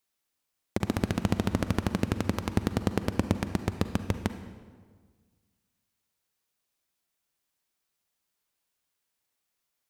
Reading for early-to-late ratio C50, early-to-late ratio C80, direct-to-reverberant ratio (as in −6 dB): 10.0 dB, 12.0 dB, 9.5 dB